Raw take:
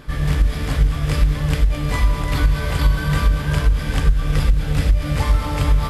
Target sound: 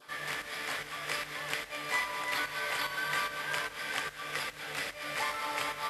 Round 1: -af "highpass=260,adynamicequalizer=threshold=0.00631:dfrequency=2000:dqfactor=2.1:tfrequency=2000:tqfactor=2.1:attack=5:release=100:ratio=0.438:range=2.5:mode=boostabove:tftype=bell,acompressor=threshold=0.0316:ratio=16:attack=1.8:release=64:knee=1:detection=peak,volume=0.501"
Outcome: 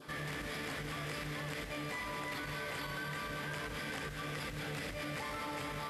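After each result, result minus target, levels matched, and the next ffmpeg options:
compression: peak gain reduction +14 dB; 250 Hz band +13.0 dB
-af "highpass=260,adynamicequalizer=threshold=0.00631:dfrequency=2000:dqfactor=2.1:tfrequency=2000:tqfactor=2.1:attack=5:release=100:ratio=0.438:range=2.5:mode=boostabove:tftype=bell,volume=0.501"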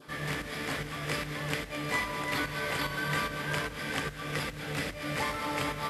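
250 Hz band +12.0 dB
-af "highpass=680,adynamicequalizer=threshold=0.00631:dfrequency=2000:dqfactor=2.1:tfrequency=2000:tqfactor=2.1:attack=5:release=100:ratio=0.438:range=2.5:mode=boostabove:tftype=bell,volume=0.501"

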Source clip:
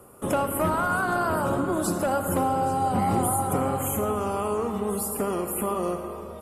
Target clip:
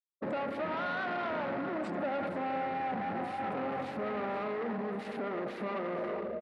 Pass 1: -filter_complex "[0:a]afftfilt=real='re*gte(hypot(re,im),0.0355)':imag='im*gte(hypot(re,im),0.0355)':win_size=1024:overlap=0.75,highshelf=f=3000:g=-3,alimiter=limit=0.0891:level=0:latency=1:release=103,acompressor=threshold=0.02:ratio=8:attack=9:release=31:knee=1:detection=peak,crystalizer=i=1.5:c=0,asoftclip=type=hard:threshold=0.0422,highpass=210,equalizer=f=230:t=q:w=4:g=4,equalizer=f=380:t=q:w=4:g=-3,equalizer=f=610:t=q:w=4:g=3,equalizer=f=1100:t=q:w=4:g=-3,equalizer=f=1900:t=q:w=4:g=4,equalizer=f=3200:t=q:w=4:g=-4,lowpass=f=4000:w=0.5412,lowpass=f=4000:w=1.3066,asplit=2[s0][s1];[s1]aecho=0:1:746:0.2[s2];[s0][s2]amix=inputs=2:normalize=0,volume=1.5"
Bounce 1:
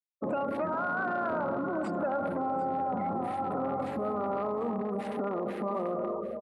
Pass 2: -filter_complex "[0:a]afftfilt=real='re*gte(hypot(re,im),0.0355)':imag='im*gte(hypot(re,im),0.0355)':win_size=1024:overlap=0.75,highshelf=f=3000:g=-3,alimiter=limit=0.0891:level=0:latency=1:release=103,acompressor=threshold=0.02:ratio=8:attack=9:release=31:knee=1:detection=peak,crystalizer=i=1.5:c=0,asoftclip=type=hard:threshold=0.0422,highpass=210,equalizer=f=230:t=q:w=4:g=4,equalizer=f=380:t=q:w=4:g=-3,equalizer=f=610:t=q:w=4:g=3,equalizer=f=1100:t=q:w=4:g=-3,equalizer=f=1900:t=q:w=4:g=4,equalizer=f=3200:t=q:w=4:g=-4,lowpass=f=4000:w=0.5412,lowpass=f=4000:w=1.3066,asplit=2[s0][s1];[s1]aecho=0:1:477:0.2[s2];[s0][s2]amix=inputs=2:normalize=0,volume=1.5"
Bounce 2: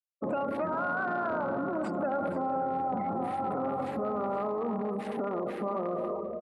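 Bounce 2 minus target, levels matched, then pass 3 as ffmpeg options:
hard clipper: distortion -9 dB
-filter_complex "[0:a]afftfilt=real='re*gte(hypot(re,im),0.0355)':imag='im*gte(hypot(re,im),0.0355)':win_size=1024:overlap=0.75,highshelf=f=3000:g=-3,alimiter=limit=0.0891:level=0:latency=1:release=103,acompressor=threshold=0.02:ratio=8:attack=9:release=31:knee=1:detection=peak,crystalizer=i=1.5:c=0,asoftclip=type=hard:threshold=0.0168,highpass=210,equalizer=f=230:t=q:w=4:g=4,equalizer=f=380:t=q:w=4:g=-3,equalizer=f=610:t=q:w=4:g=3,equalizer=f=1100:t=q:w=4:g=-3,equalizer=f=1900:t=q:w=4:g=4,equalizer=f=3200:t=q:w=4:g=-4,lowpass=f=4000:w=0.5412,lowpass=f=4000:w=1.3066,asplit=2[s0][s1];[s1]aecho=0:1:477:0.2[s2];[s0][s2]amix=inputs=2:normalize=0,volume=1.5"

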